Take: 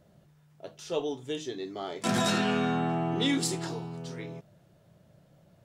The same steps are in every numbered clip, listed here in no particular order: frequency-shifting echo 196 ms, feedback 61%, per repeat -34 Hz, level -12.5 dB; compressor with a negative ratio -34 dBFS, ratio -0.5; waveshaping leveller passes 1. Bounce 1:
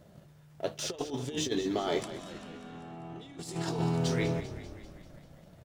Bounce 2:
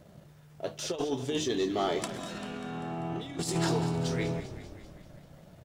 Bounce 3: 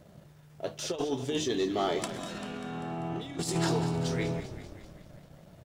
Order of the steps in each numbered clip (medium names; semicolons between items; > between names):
waveshaping leveller > compressor with a negative ratio > frequency-shifting echo; compressor with a negative ratio > waveshaping leveller > frequency-shifting echo; compressor with a negative ratio > frequency-shifting echo > waveshaping leveller